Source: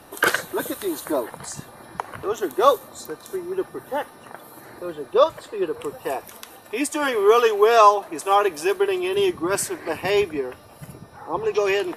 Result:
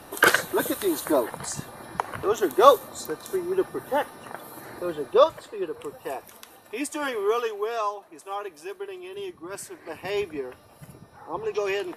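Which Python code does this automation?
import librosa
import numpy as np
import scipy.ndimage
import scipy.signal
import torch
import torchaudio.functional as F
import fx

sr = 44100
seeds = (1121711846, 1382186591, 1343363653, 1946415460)

y = fx.gain(x, sr, db=fx.line((5.0, 1.5), (5.63, -6.0), (7.08, -6.0), (7.83, -15.0), (9.4, -15.0), (10.37, -6.0)))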